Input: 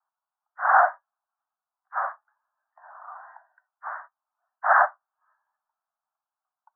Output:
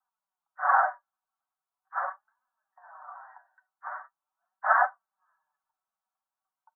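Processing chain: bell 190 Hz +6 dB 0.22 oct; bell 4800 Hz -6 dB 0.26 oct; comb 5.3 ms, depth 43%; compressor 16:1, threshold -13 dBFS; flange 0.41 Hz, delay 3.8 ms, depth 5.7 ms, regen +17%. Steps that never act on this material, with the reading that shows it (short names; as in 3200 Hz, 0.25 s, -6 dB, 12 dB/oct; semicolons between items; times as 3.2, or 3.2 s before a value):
bell 190 Hz: input band starts at 510 Hz; bell 4800 Hz: input band ends at 2000 Hz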